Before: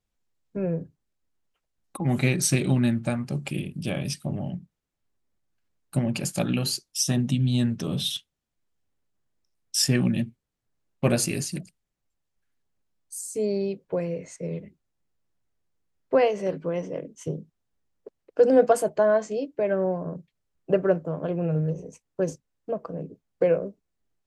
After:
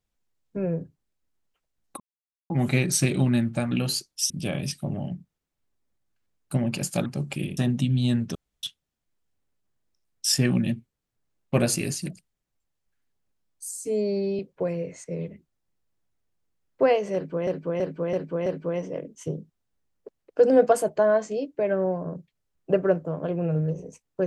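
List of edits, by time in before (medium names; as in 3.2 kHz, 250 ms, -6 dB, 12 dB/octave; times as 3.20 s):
2.00 s: insert silence 0.50 s
3.21–3.72 s: swap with 6.48–7.07 s
7.85–8.13 s: room tone
13.35–13.71 s: stretch 1.5×
16.46–16.79 s: loop, 5 plays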